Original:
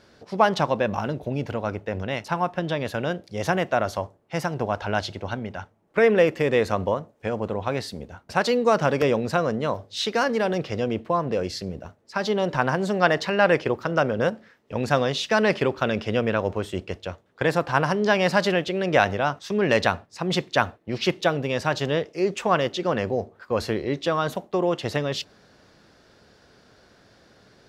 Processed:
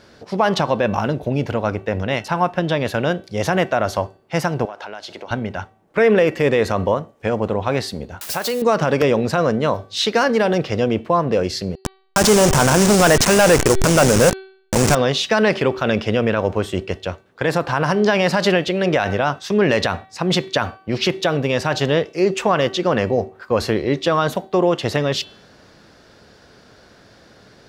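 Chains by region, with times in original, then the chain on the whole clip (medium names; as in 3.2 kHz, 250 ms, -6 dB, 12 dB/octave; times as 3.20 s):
4.65–5.31 s: high-pass 330 Hz + compression 10:1, threshold -35 dBFS
8.21–8.62 s: zero-crossing glitches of -23 dBFS + bass shelf 150 Hz -10.5 dB + compression 4:1, threshold -26 dBFS
11.75–14.95 s: send-on-delta sampling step -26 dBFS + high-order bell 7.1 kHz +10 dB 1.1 oct + waveshaping leveller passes 3
whole clip: de-hum 382.3 Hz, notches 12; loudness maximiser +12 dB; trim -5 dB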